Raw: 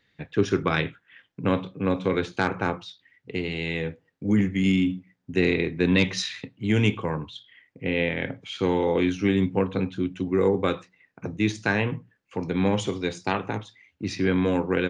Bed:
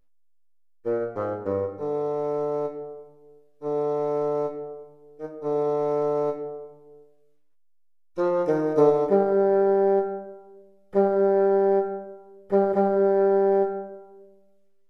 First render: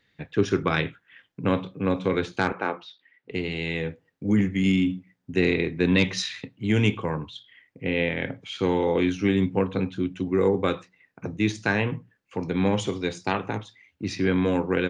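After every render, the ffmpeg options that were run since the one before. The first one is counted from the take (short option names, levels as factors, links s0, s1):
-filter_complex "[0:a]asettb=1/sr,asplit=3[s0][s1][s2];[s0]atrim=end=2.524[s3];[s1]atrim=start=2.52:end=3.31,asetpts=PTS-STARTPTS,afade=t=in:d=0.004:c=qsin,afade=t=out:st=0.786:d=0.004:c=qsin,highpass=310,lowpass=3700[s4];[s2]atrim=start=3.306[s5];[s3][s4]acrossfade=d=0.004:c1=hsin:c2=qsin[s6];[s6][s5]acrossfade=d=0.004:c1=qsin:c2=hsin"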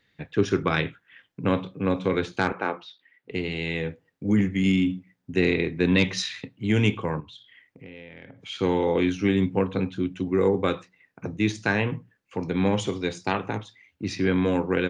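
-filter_complex "[0:a]asettb=1/sr,asplit=3[s0][s1][s2];[s0]atrim=end=7.204[s3];[s1]atrim=start=7.2:end=8.43,asetpts=PTS-STARTPTS,afade=t=in:d=0.004:c=qsin,afade=t=out:st=1.226:d=0.004:c=qsin,acompressor=threshold=0.00794:ratio=5:attack=3.2:release=140:knee=1:detection=peak[s4];[s2]atrim=start=8.426[s5];[s3][s4]acrossfade=d=0.004:c1=hsin:c2=qsin[s6];[s6][s5]acrossfade=d=0.004:c1=qsin:c2=hsin"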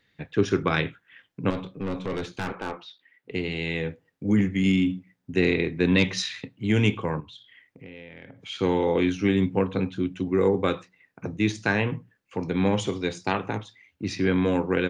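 -filter_complex "[0:a]asettb=1/sr,asplit=3[s0][s1][s2];[s0]atrim=end=1.504[s3];[s1]atrim=start=1.5:end=2.79,asetpts=PTS-STARTPTS,afade=t=in:d=0.004:c=qsin,afade=t=out:st=1.286:d=0.004:c=qsin,aeval=exprs='(tanh(17.8*val(0)+0.35)-tanh(0.35))/17.8':c=same[s4];[s2]atrim=start=2.786[s5];[s3][s4]acrossfade=d=0.004:c1=hsin:c2=qsin[s6];[s6][s5]acrossfade=d=0.004:c1=qsin:c2=hsin"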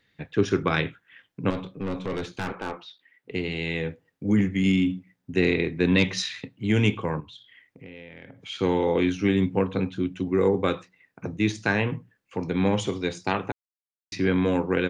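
-filter_complex "[0:a]asplit=3[s0][s1][s2];[s0]atrim=end=13.52,asetpts=PTS-STARTPTS,afade=t=out:st=13.516:d=0.004:c=hsin[s3];[s1]atrim=start=13.52:end=14.12,asetpts=PTS-STARTPTS,volume=0[s4];[s2]atrim=start=14.12,asetpts=PTS-STARTPTS,afade=t=in:d=0.004:c=hsin[s5];[s3][s4][s5]concat=n=3:v=0:a=1"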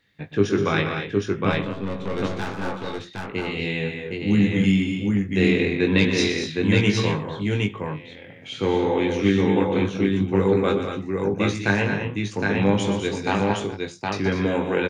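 -filter_complex "[0:a]asplit=2[s0][s1];[s1]adelay=20,volume=0.596[s2];[s0][s2]amix=inputs=2:normalize=0,asplit=2[s3][s4];[s4]aecho=0:1:121|199|234|764:0.316|0.335|0.355|0.708[s5];[s3][s5]amix=inputs=2:normalize=0"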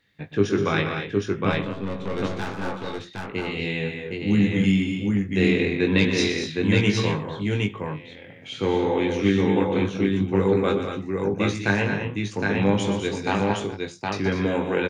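-af "volume=0.891"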